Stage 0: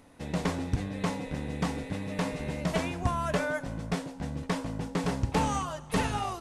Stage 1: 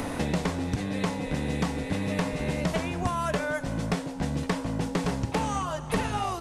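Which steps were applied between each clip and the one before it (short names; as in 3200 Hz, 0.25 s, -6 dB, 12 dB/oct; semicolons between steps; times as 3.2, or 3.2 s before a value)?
three-band squash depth 100%; gain +1.5 dB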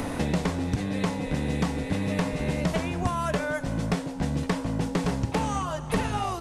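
low shelf 320 Hz +2.5 dB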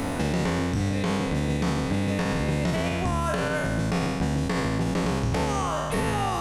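spectral trails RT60 1.57 s; limiter -16.5 dBFS, peak gain reduction 6.5 dB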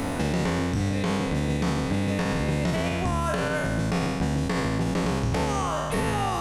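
nothing audible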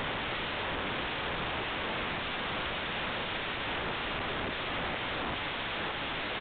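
wrapped overs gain 27.5 dB; downsampling 8000 Hz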